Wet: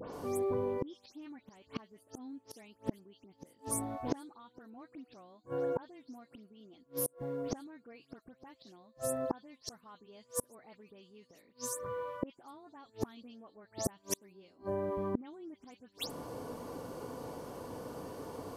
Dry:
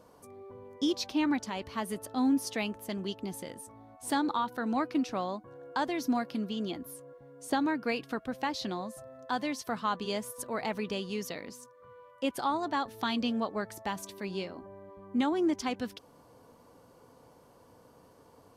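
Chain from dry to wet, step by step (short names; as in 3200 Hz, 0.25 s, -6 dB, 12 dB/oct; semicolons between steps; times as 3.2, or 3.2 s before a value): spectral delay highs late, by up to 0.127 s; bell 330 Hz +4 dB 1.7 oct; flipped gate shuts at -32 dBFS, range -36 dB; gain +12 dB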